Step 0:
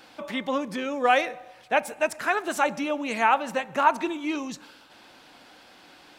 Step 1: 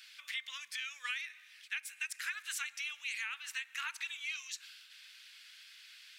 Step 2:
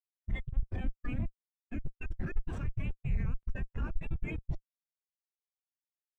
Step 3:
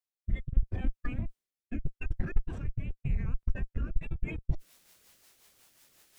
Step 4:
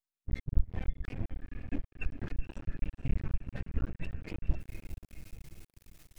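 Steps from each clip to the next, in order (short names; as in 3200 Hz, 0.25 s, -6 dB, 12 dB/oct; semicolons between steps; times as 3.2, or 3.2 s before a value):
inverse Chebyshev high-pass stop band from 730 Hz, stop band 50 dB; compressor 10:1, threshold -35 dBFS, peak gain reduction 12 dB
Schmitt trigger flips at -36.5 dBFS; spectral expander 2.5:1; gain +18 dB
transient shaper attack +7 dB, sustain +2 dB; reverse; upward compressor, threshold -30 dBFS; reverse; rotary speaker horn 0.8 Hz, later 5.5 Hz, at 3.6
bin magnitudes rounded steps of 15 dB; diffused feedback echo 0.479 s, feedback 50%, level -9 dB; half-wave rectifier; gain +1.5 dB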